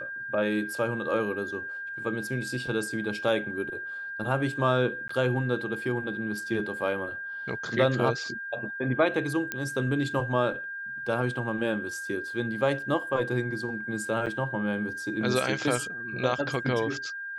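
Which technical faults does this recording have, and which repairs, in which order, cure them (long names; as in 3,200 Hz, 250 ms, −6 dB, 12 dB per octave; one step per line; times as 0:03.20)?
whistle 1,600 Hz −34 dBFS
0:05.08–0:05.09: drop-out 14 ms
0:09.52: click −14 dBFS
0:14.26–0:14.27: drop-out 7 ms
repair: click removal
notch filter 1,600 Hz, Q 30
repair the gap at 0:05.08, 14 ms
repair the gap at 0:14.26, 7 ms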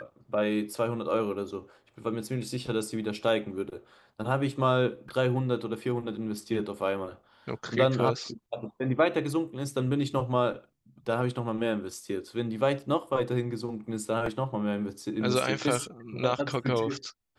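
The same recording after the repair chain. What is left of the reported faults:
none of them is left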